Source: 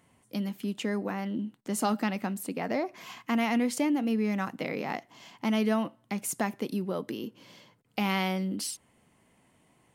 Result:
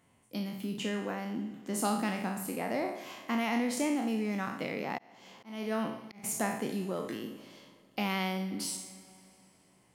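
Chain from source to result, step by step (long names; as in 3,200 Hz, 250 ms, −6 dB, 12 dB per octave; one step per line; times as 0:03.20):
peak hold with a decay on every bin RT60 0.64 s
four-comb reverb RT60 3 s, combs from 32 ms, DRR 15.5 dB
0:04.98–0:06.24: volume swells 381 ms
level −4.5 dB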